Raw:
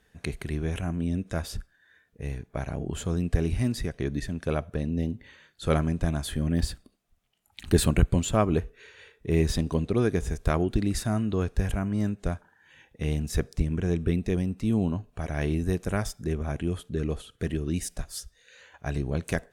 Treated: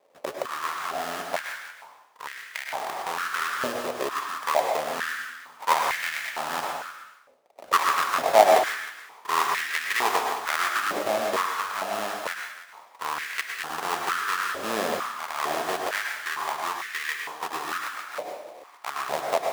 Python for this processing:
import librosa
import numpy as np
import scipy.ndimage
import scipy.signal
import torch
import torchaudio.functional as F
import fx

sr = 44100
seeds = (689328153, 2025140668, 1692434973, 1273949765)

p1 = fx.sample_hold(x, sr, seeds[0], rate_hz=1500.0, jitter_pct=20)
p2 = p1 + fx.echo_single(p1, sr, ms=312, db=-15.5, dry=0)
p3 = fx.rev_plate(p2, sr, seeds[1], rt60_s=0.81, hf_ratio=0.95, predelay_ms=90, drr_db=2.0)
p4 = fx.filter_held_highpass(p3, sr, hz=2.2, low_hz=570.0, high_hz=1900.0)
y = F.gain(torch.from_numpy(p4), 1.5).numpy()